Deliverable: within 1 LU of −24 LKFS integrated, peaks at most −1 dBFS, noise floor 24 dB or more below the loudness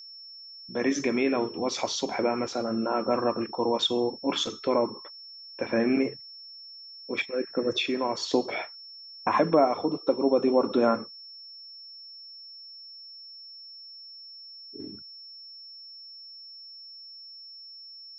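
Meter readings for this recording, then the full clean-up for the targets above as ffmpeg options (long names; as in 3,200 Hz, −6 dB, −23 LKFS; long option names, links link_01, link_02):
interfering tone 5,400 Hz; level of the tone −43 dBFS; integrated loudness −27.0 LKFS; sample peak −9.0 dBFS; target loudness −24.0 LKFS
→ -af "bandreject=frequency=5400:width=30"
-af "volume=3dB"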